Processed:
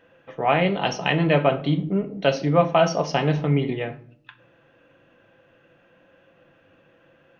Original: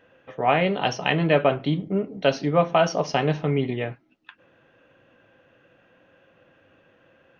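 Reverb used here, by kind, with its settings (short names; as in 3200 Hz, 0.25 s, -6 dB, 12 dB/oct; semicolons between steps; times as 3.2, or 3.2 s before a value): shoebox room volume 730 m³, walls furnished, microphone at 0.76 m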